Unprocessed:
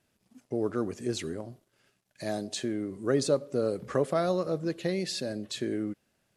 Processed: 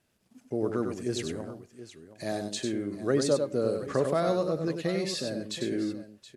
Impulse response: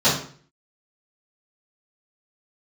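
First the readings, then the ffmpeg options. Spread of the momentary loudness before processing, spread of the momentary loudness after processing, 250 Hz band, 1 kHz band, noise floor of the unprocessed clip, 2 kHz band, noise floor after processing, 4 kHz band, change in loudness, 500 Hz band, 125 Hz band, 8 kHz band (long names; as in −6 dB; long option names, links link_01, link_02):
10 LU, 14 LU, +1.0 dB, +1.0 dB, −75 dBFS, +1.0 dB, −68 dBFS, +1.0 dB, +1.0 dB, +1.0 dB, +1.0 dB, +1.0 dB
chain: -af "aecho=1:1:97|724:0.501|0.188"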